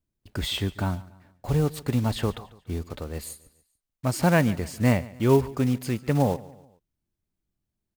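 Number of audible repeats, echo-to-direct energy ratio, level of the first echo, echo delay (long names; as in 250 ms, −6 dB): 3, −19.0 dB, −20.0 dB, 143 ms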